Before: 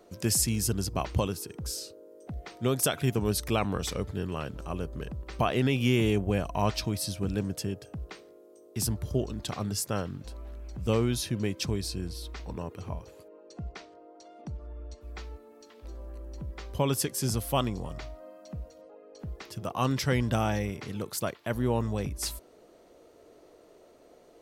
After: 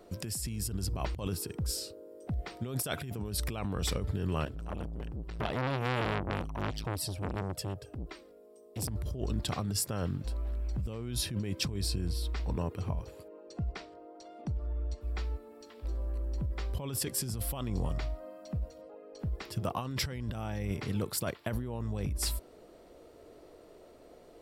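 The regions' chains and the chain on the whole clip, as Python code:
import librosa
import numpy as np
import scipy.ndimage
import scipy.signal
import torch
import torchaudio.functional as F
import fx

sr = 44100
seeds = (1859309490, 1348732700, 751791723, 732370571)

y = fx.chain(x, sr, fx.env_flanger(rest_ms=5.1, full_db=-22.0),
    fx.transformer_sat(knee_hz=2000.0), at=(4.45, 8.89))
y = fx.low_shelf(y, sr, hz=110.0, db=8.5)
y = fx.notch(y, sr, hz=6300.0, q=7.2)
y = fx.over_compress(y, sr, threshold_db=-31.0, ratio=-1.0)
y = y * librosa.db_to_amplitude(-2.0)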